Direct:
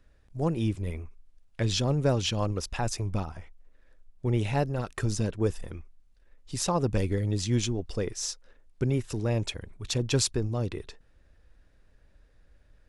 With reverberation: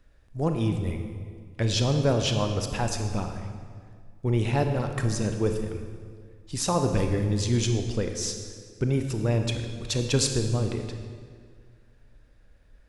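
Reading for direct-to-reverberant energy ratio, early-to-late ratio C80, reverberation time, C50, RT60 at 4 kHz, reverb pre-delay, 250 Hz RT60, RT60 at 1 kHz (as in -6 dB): 5.0 dB, 7.5 dB, 1.9 s, 6.0 dB, 1.5 s, 27 ms, 2.1 s, 1.8 s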